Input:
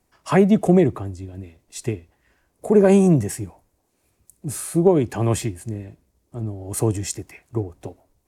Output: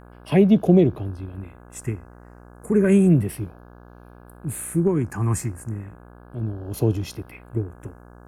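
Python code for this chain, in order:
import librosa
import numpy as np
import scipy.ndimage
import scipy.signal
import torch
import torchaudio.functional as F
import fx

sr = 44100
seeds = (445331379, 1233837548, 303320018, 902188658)

y = fx.phaser_stages(x, sr, stages=4, low_hz=560.0, high_hz=1500.0, hz=0.33, feedback_pct=20)
y = fx.dmg_buzz(y, sr, base_hz=60.0, harmonics=28, level_db=-46.0, tilt_db=-4, odd_only=False)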